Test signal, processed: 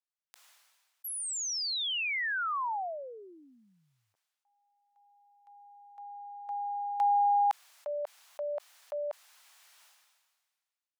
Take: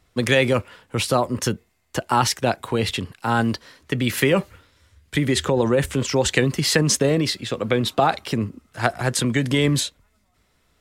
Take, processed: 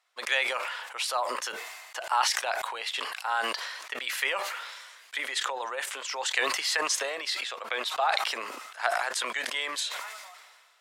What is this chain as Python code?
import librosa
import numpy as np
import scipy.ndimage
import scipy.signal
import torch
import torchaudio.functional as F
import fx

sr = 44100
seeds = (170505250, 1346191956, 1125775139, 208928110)

y = scipy.signal.sosfilt(scipy.signal.butter(4, 740.0, 'highpass', fs=sr, output='sos'), x)
y = fx.high_shelf(y, sr, hz=9600.0, db=-9.5)
y = fx.sustainer(y, sr, db_per_s=36.0)
y = y * librosa.db_to_amplitude(-5.5)